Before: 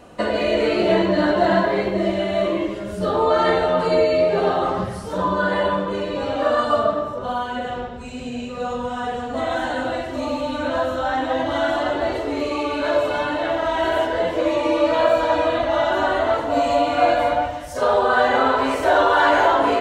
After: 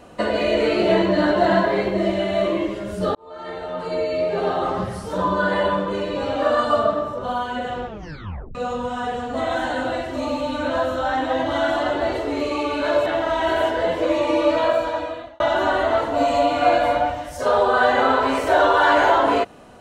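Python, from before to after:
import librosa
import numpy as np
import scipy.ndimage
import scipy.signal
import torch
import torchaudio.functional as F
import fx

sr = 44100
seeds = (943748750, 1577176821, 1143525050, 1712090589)

y = fx.edit(x, sr, fx.fade_in_span(start_s=3.15, length_s=1.82),
    fx.tape_stop(start_s=7.86, length_s=0.69),
    fx.cut(start_s=13.06, length_s=0.36),
    fx.fade_out_span(start_s=14.86, length_s=0.9), tone=tone)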